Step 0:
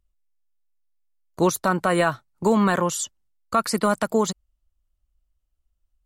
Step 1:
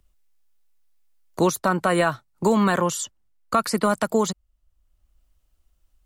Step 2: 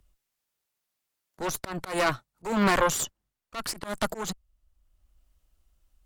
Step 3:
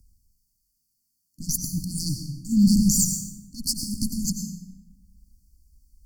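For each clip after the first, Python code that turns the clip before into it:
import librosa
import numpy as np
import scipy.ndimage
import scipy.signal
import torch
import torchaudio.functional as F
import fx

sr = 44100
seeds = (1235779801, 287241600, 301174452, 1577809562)

y1 = fx.band_squash(x, sr, depth_pct=40)
y2 = fx.cheby_harmonics(y1, sr, harmonics=(5, 6, 7), levels_db=(-12, -9, -23), full_scale_db=-7.0)
y2 = fx.auto_swell(y2, sr, attack_ms=251.0)
y2 = F.gain(torch.from_numpy(y2), -5.5).numpy()
y3 = fx.brickwall_bandstop(y2, sr, low_hz=300.0, high_hz=4300.0)
y3 = fx.rev_plate(y3, sr, seeds[0], rt60_s=1.3, hf_ratio=0.5, predelay_ms=80, drr_db=3.5)
y3 = F.gain(torch.from_numpy(y3), 8.0).numpy()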